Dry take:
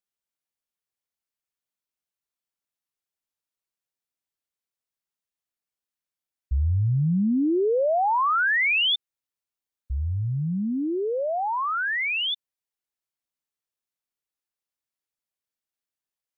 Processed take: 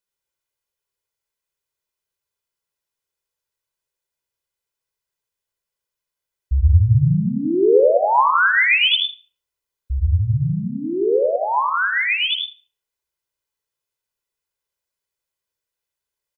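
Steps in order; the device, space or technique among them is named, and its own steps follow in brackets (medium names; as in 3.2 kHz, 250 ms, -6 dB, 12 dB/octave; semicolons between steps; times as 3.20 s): microphone above a desk (comb 2 ms, depth 62%; reverberation RT60 0.50 s, pre-delay 76 ms, DRR 1 dB); trim +2.5 dB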